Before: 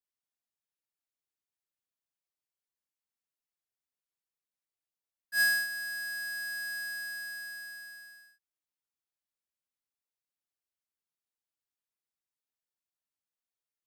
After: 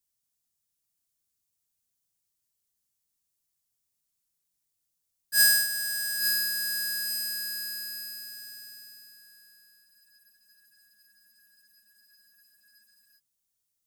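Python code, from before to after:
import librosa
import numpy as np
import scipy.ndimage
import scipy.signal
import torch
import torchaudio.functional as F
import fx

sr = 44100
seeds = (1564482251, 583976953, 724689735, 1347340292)

y = fx.bass_treble(x, sr, bass_db=13, treble_db=14)
y = fx.echo_feedback(y, sr, ms=855, feedback_pct=28, wet_db=-8)
y = fx.spec_freeze(y, sr, seeds[0], at_s=9.86, hold_s=3.32)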